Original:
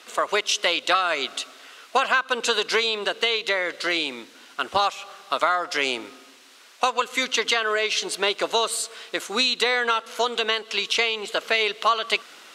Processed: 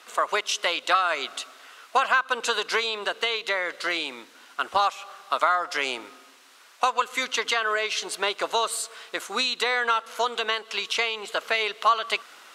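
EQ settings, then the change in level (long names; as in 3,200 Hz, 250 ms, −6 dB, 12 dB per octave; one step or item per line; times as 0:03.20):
parametric band 1,100 Hz +8.5 dB 2.1 octaves
high-shelf EQ 6,400 Hz +8 dB
−8.0 dB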